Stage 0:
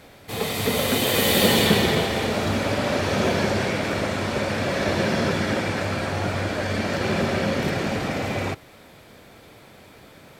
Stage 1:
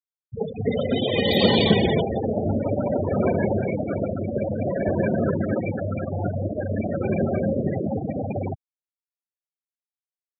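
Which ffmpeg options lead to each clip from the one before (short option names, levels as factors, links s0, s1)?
-af "afftfilt=real='re*gte(hypot(re,im),0.158)':imag='im*gte(hypot(re,im),0.158)':win_size=1024:overlap=0.75,bandreject=f=1800:w=19,volume=1.19"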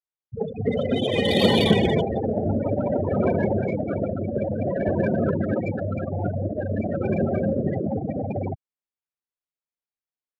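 -af "adynamicsmooth=sensitivity=2.5:basefreq=3700"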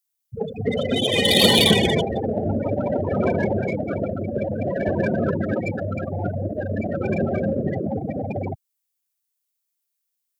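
-af "crystalizer=i=5:c=0"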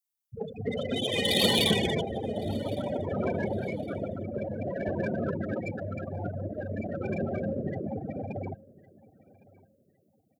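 -af "aecho=1:1:1110|2220:0.0708|0.0184,volume=0.376"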